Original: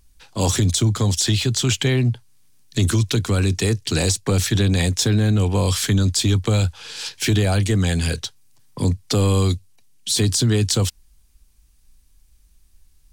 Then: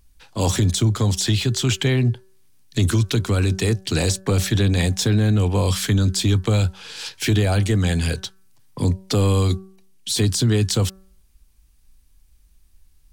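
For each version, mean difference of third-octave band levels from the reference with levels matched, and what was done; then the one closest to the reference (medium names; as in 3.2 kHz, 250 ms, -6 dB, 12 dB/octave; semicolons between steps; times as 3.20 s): 1.0 dB: peaking EQ 6.9 kHz -3.5 dB 1.6 oct; de-hum 190.5 Hz, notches 9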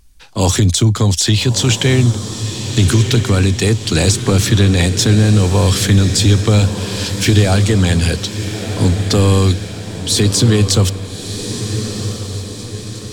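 5.0 dB: treble shelf 8.8 kHz -3.5 dB; on a send: echo that smears into a reverb 1291 ms, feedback 52%, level -8.5 dB; on the sum: trim +6 dB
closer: first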